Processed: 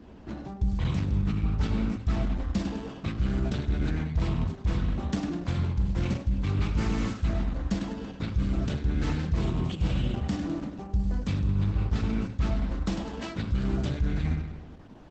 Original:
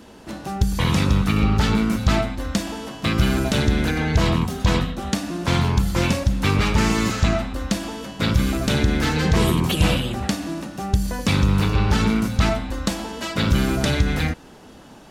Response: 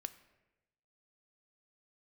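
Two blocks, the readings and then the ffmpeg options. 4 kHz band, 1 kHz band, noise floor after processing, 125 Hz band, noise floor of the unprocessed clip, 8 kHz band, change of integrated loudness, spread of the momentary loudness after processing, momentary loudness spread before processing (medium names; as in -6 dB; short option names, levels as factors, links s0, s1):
-16.5 dB, -14.5 dB, -45 dBFS, -7.0 dB, -45 dBFS, -19.0 dB, -8.5 dB, 6 LU, 7 LU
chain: -filter_complex "[0:a]aecho=1:1:102|204|306|408|510:0.282|0.144|0.0733|0.0374|0.0191[s0];[1:a]atrim=start_sample=2205,atrim=end_sample=3087[s1];[s0][s1]afir=irnorm=-1:irlink=0,acrossover=split=180[s2][s3];[s3]adynamicsmooth=sensitivity=7.5:basefreq=3800[s4];[s2][s4]amix=inputs=2:normalize=0,lowshelf=f=230:g=11.5,areverse,acompressor=threshold=0.112:ratio=5,areverse,volume=0.596" -ar 48000 -c:a libopus -b:a 12k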